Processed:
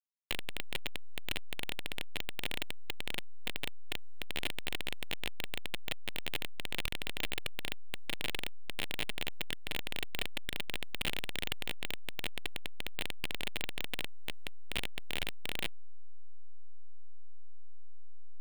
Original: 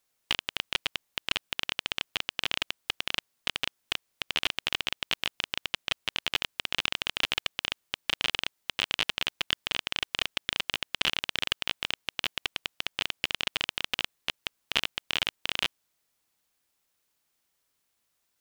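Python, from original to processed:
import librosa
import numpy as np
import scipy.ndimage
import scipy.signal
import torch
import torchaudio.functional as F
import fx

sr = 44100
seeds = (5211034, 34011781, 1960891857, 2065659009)

y = fx.delta_hold(x, sr, step_db=-17.5)
y = 10.0 ** (-12.5 / 20.0) * np.tanh(y / 10.0 ** (-12.5 / 20.0))
y = fx.high_shelf(y, sr, hz=9100.0, db=3.5)
y = F.gain(torch.from_numpy(y), -7.0).numpy()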